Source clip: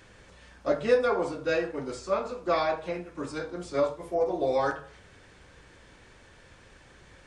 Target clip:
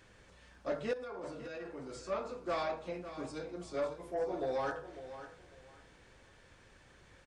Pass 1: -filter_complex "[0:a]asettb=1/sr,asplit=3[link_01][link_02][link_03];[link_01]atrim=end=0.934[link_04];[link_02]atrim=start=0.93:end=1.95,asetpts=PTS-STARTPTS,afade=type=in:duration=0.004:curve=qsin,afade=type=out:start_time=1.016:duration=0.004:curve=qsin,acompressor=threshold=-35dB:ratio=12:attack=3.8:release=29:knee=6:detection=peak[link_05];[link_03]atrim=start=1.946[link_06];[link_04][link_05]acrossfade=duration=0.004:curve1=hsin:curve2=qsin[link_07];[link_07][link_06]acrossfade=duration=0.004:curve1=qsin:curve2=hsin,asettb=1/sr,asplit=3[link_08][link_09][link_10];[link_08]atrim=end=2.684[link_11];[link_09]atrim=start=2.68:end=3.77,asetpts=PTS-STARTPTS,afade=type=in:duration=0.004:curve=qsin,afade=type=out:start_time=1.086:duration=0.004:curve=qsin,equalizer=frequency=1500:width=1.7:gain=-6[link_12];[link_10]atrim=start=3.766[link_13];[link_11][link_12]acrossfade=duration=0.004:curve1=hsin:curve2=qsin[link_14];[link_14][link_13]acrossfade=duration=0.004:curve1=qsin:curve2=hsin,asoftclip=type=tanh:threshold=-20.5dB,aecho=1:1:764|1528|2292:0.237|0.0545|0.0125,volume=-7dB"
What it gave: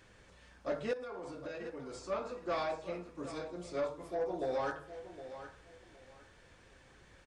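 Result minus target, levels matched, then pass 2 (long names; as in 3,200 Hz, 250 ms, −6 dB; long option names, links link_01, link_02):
echo 214 ms late
-filter_complex "[0:a]asettb=1/sr,asplit=3[link_01][link_02][link_03];[link_01]atrim=end=0.934[link_04];[link_02]atrim=start=0.93:end=1.95,asetpts=PTS-STARTPTS,afade=type=in:duration=0.004:curve=qsin,afade=type=out:start_time=1.016:duration=0.004:curve=qsin,acompressor=threshold=-35dB:ratio=12:attack=3.8:release=29:knee=6:detection=peak[link_05];[link_03]atrim=start=1.946[link_06];[link_04][link_05]acrossfade=duration=0.004:curve1=hsin:curve2=qsin[link_07];[link_07][link_06]acrossfade=duration=0.004:curve1=qsin:curve2=hsin,asettb=1/sr,asplit=3[link_08][link_09][link_10];[link_08]atrim=end=2.684[link_11];[link_09]atrim=start=2.68:end=3.77,asetpts=PTS-STARTPTS,afade=type=in:duration=0.004:curve=qsin,afade=type=out:start_time=1.086:duration=0.004:curve=qsin,equalizer=frequency=1500:width=1.7:gain=-6[link_12];[link_10]atrim=start=3.766[link_13];[link_11][link_12]acrossfade=duration=0.004:curve1=hsin:curve2=qsin[link_14];[link_14][link_13]acrossfade=duration=0.004:curve1=qsin:curve2=hsin,asoftclip=type=tanh:threshold=-20.5dB,aecho=1:1:550|1100|1650:0.237|0.0545|0.0125,volume=-7dB"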